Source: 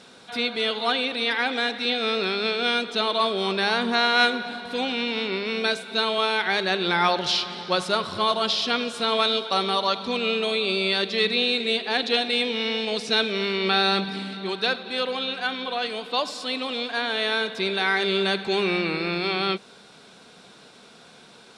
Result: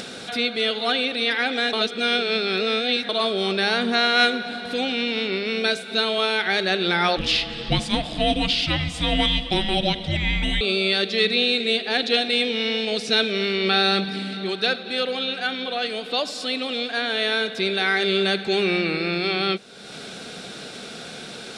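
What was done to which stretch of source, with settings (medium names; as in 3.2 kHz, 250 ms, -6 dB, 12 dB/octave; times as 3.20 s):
1.73–3.09 s: reverse
7.17–10.61 s: frequency shift -400 Hz
whole clip: upward compressor, threshold -27 dBFS; peaking EQ 1 kHz -12.5 dB 0.34 oct; trim +2.5 dB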